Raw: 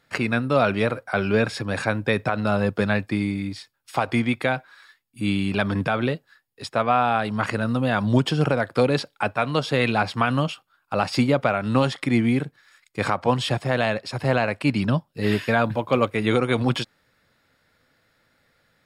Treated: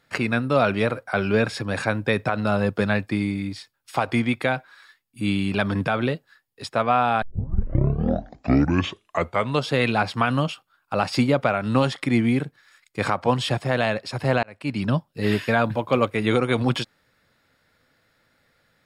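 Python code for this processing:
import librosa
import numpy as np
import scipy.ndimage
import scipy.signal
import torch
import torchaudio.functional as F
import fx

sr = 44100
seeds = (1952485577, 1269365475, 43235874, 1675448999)

y = fx.edit(x, sr, fx.tape_start(start_s=7.22, length_s=2.46),
    fx.fade_in_span(start_s=14.43, length_s=0.51), tone=tone)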